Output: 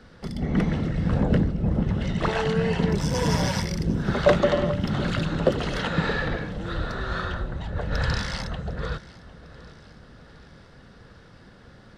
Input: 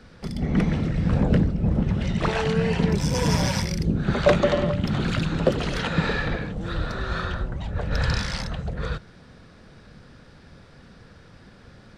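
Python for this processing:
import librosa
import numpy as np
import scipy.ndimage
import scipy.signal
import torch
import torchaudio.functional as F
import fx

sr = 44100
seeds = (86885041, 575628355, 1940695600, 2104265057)

p1 = fx.bass_treble(x, sr, bass_db=-2, treble_db=-3)
p2 = fx.notch(p1, sr, hz=2400.0, q=10.0)
y = p2 + fx.echo_feedback(p2, sr, ms=753, feedback_pct=54, wet_db=-19.5, dry=0)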